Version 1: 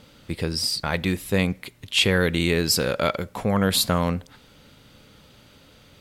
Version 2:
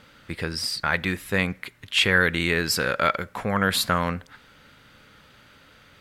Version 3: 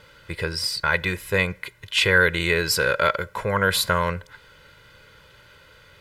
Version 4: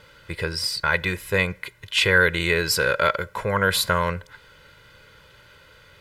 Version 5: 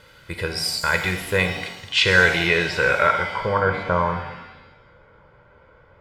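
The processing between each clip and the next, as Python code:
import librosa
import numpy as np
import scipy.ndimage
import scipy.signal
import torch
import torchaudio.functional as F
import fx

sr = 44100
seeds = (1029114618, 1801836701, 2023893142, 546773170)

y1 = fx.peak_eq(x, sr, hz=1600.0, db=11.5, octaves=1.3)
y1 = y1 * librosa.db_to_amplitude(-4.5)
y2 = y1 + 0.74 * np.pad(y1, (int(2.0 * sr / 1000.0), 0))[:len(y1)]
y3 = y2
y4 = fx.filter_sweep_lowpass(y3, sr, from_hz=13000.0, to_hz=980.0, start_s=1.04, end_s=3.75, q=1.3)
y4 = fx.rev_shimmer(y4, sr, seeds[0], rt60_s=1.0, semitones=7, shimmer_db=-8, drr_db=5.5)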